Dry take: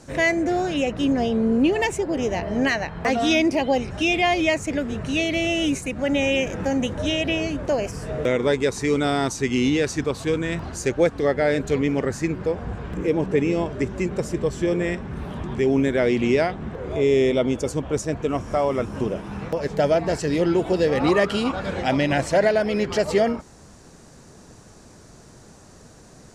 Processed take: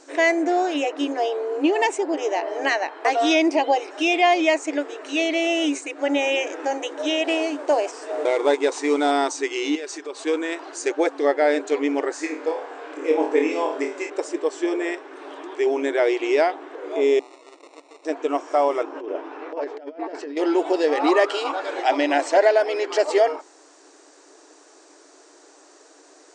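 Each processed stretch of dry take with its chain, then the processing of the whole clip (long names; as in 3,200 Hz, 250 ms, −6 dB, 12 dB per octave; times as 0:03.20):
0:07.24–0:09.11: variable-slope delta modulation 64 kbit/s + parametric band 840 Hz +3 dB 0.91 octaves
0:09.75–0:10.24: downward compressor 5 to 1, threshold −28 dBFS + comb filter 5 ms, depth 40%
0:12.16–0:14.10: notch filter 350 Hz, Q 9.3 + flutter between parallel walls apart 4.4 metres, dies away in 0.36 s
0:17.19–0:18.05: first difference + compressor whose output falls as the input rises −46 dBFS + sample-rate reduction 1,600 Hz
0:18.83–0:20.37: compressor whose output falls as the input rises −26 dBFS, ratio −0.5 + head-to-tape spacing loss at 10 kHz 26 dB
whole clip: notch filter 520 Hz, Q 17; brick-wall band-pass 270–9,100 Hz; dynamic equaliser 830 Hz, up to +6 dB, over −36 dBFS, Q 1.8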